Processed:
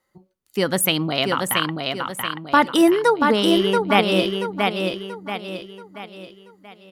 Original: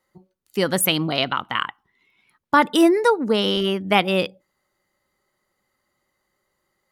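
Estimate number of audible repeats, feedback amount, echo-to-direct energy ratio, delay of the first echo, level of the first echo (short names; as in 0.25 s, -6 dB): 5, 42%, -3.0 dB, 0.682 s, -4.0 dB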